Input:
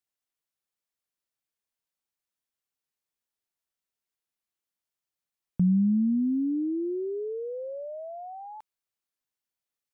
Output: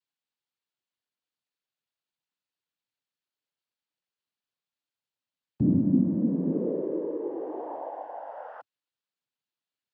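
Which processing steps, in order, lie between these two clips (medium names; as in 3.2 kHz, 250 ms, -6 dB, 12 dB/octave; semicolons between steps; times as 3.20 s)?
resampled via 11.025 kHz; noise-vocoded speech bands 8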